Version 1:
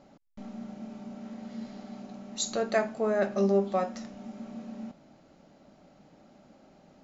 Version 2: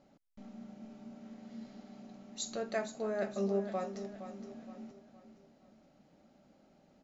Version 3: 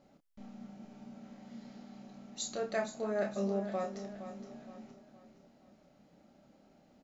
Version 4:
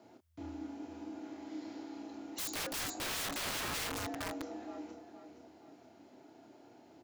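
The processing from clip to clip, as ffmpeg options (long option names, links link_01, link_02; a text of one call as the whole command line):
ffmpeg -i in.wav -filter_complex "[0:a]equalizer=frequency=1000:width=1.5:gain=-2.5,asplit=2[link_01][link_02];[link_02]aecho=0:1:467|934|1401|1868:0.266|0.112|0.0469|0.0197[link_03];[link_01][link_03]amix=inputs=2:normalize=0,volume=-8dB" out.wav
ffmpeg -i in.wav -filter_complex "[0:a]asplit=2[link_01][link_02];[link_02]adelay=29,volume=-5dB[link_03];[link_01][link_03]amix=inputs=2:normalize=0" out.wav
ffmpeg -i in.wav -af "afreqshift=80,aeval=exprs='(mod(79.4*val(0)+1,2)-1)/79.4':channel_layout=same,volume=5dB" out.wav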